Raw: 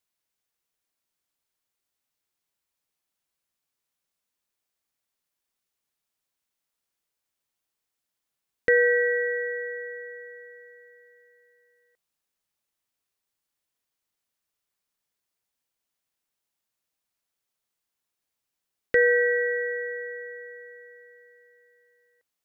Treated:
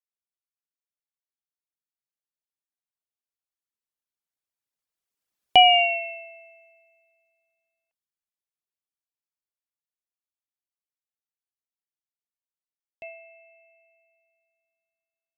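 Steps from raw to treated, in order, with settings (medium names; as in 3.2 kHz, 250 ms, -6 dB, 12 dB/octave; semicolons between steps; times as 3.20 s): Doppler pass-by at 8.39 s, 23 m/s, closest 8.8 m; reverb removal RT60 0.86 s; wide varispeed 1.46×; trim +8.5 dB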